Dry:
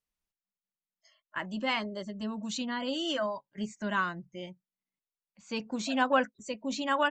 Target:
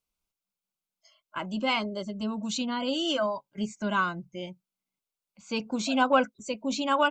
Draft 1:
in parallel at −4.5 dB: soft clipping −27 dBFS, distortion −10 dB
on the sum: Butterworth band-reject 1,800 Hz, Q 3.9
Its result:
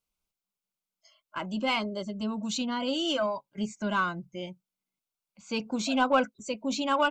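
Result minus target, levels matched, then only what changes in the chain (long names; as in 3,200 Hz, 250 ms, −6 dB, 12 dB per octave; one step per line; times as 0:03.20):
soft clipping: distortion +12 dB
change: soft clipping −16 dBFS, distortion −22 dB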